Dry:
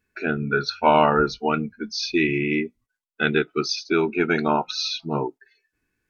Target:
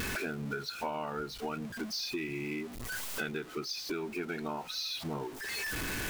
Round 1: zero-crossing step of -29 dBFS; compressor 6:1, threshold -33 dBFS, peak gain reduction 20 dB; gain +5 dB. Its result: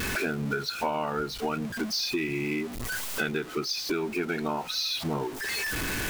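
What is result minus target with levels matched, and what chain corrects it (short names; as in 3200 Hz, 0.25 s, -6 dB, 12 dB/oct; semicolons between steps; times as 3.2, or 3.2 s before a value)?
compressor: peak gain reduction -7 dB
zero-crossing step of -29 dBFS; compressor 6:1, threshold -41.5 dBFS, peak gain reduction 27 dB; gain +5 dB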